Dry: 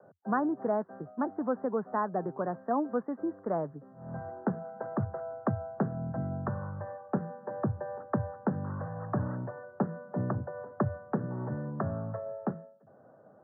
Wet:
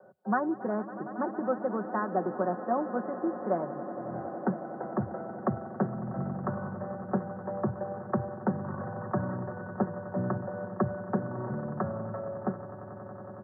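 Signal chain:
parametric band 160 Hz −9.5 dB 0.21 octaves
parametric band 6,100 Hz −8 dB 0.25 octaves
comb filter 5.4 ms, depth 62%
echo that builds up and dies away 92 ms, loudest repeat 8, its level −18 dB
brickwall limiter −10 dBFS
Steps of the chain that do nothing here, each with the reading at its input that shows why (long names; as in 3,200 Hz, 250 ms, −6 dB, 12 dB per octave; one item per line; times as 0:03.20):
parametric band 6,100 Hz: nothing at its input above 1,800 Hz
brickwall limiter −10 dBFS: peak of its input −14.5 dBFS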